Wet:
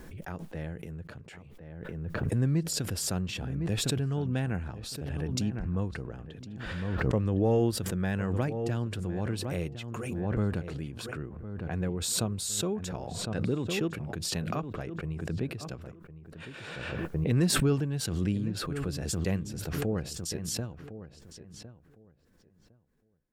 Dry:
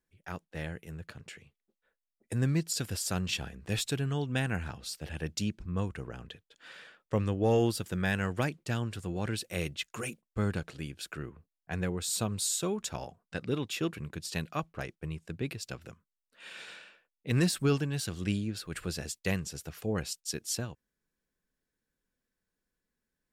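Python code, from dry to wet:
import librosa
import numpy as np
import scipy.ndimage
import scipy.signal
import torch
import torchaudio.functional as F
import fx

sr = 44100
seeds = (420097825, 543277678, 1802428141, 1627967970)

y = fx.tilt_shelf(x, sr, db=6.0, hz=1300.0)
y = fx.echo_filtered(y, sr, ms=1058, feedback_pct=19, hz=1900.0, wet_db=-13.5)
y = fx.pre_swell(y, sr, db_per_s=27.0)
y = F.gain(torch.from_numpy(y), -4.5).numpy()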